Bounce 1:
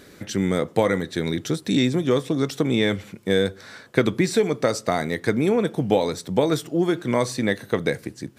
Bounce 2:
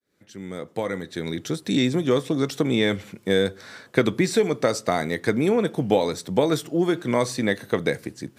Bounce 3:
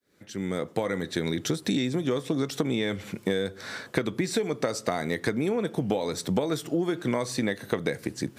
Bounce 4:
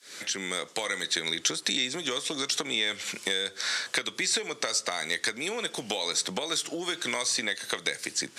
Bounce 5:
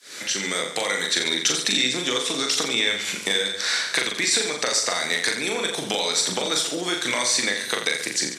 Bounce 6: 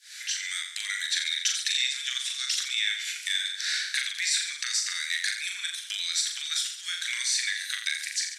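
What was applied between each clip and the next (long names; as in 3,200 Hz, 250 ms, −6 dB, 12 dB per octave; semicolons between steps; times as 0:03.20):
fade in at the beginning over 1.93 s; low-shelf EQ 92 Hz −5 dB
downward compressor 10 to 1, threshold −28 dBFS, peak gain reduction 15.5 dB; level +5 dB
meter weighting curve ITU-R 468; multiband upward and downward compressor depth 70%; level −1.5 dB
mains-hum notches 50/100 Hz; on a send: reverse bouncing-ball delay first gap 40 ms, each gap 1.15×, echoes 5; on the sum: level +4.5 dB
elliptic high-pass filter 1,600 Hz, stop band 80 dB; level −4.5 dB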